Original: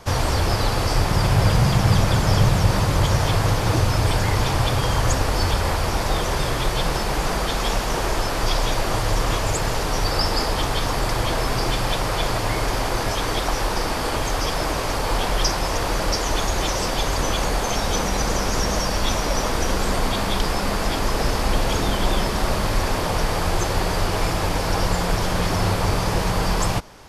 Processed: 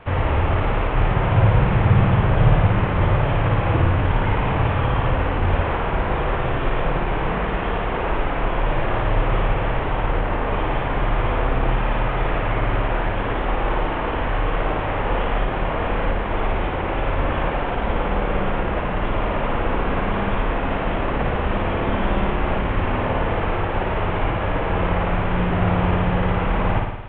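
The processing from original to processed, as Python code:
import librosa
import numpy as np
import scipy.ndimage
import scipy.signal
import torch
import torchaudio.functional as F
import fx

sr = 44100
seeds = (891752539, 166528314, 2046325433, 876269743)

y = fx.cvsd(x, sr, bps=16000)
y = fx.room_flutter(y, sr, wall_m=9.6, rt60_s=0.9)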